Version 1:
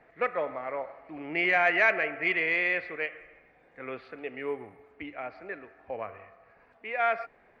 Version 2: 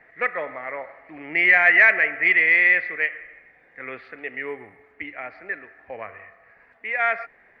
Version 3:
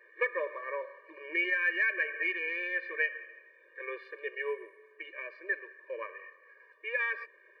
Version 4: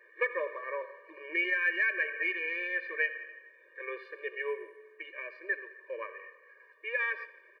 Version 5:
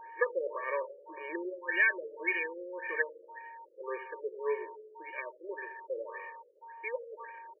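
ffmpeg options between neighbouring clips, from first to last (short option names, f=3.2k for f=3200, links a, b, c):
-af "equalizer=f=1.9k:t=o:w=0.59:g=13.5"
-af "acompressor=threshold=-20dB:ratio=12,afftfilt=real='re*eq(mod(floor(b*sr/1024/310),2),1)':imag='im*eq(mod(floor(b*sr/1024/310),2),1)':win_size=1024:overlap=0.75,volume=-2dB"
-af "aecho=1:1:86|172|258|344|430:0.126|0.0718|0.0409|0.0233|0.0133"
-af "aeval=exprs='val(0)+0.00355*sin(2*PI*920*n/s)':c=same,afftfilt=real='re*lt(b*sr/1024,560*pow(3100/560,0.5+0.5*sin(2*PI*1.8*pts/sr)))':imag='im*lt(b*sr/1024,560*pow(3100/560,0.5+0.5*sin(2*PI*1.8*pts/sr)))':win_size=1024:overlap=0.75,volume=3dB"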